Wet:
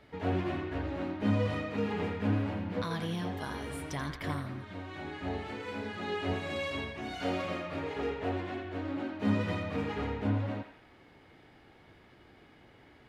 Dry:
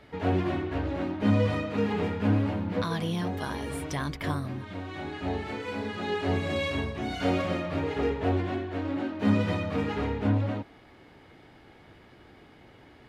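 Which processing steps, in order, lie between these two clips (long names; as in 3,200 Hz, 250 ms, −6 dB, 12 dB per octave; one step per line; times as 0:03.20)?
0:06.33–0:08.65: low-shelf EQ 230 Hz −6 dB
feedback echo with a band-pass in the loop 85 ms, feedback 56%, band-pass 2,000 Hz, level −5.5 dB
level −5 dB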